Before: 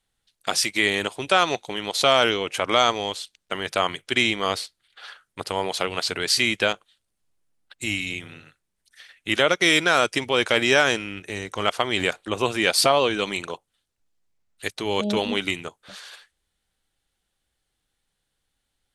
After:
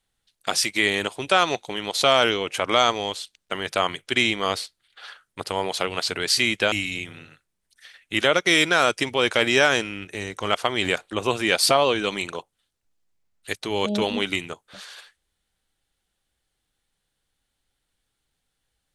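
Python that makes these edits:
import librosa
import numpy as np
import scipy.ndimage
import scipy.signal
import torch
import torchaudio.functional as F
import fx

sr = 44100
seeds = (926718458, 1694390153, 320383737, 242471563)

y = fx.edit(x, sr, fx.cut(start_s=6.72, length_s=1.15), tone=tone)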